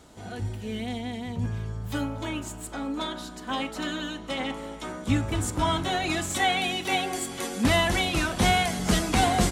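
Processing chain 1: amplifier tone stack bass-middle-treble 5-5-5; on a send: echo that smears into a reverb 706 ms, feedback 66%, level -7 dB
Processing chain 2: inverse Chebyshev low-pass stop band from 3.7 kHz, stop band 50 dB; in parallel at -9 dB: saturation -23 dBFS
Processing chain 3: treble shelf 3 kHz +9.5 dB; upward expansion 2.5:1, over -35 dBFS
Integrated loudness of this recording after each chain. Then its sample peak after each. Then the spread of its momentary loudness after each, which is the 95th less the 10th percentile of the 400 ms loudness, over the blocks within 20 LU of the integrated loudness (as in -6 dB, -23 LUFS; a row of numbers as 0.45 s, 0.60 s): -37.5 LUFS, -27.5 LUFS, -26.5 LUFS; -20.5 dBFS, -10.0 dBFS, -7.5 dBFS; 14 LU, 10 LU, 23 LU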